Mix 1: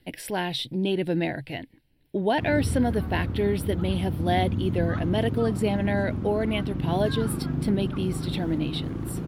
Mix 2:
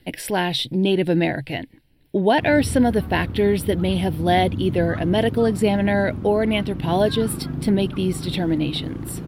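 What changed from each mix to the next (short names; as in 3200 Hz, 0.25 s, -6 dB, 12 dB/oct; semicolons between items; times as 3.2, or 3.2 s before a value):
speech +6.5 dB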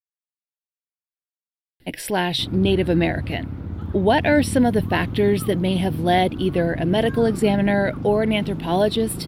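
speech: entry +1.80 s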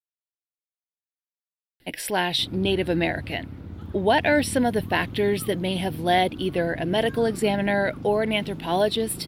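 background: add bell 1100 Hz -6 dB 2.1 oct; master: add low shelf 360 Hz -8.5 dB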